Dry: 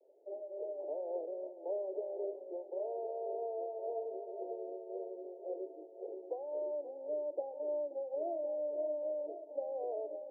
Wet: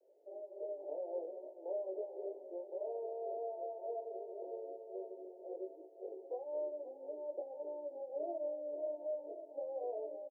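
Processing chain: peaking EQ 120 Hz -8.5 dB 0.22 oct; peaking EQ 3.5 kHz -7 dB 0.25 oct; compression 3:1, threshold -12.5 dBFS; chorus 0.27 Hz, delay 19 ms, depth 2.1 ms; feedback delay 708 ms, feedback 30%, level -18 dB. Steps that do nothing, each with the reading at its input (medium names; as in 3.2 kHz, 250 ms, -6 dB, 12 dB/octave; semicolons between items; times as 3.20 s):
peaking EQ 120 Hz: input has nothing below 270 Hz; peaking EQ 3.5 kHz: input has nothing above 910 Hz; compression, threshold -12.5 dBFS: peak at its input -26.5 dBFS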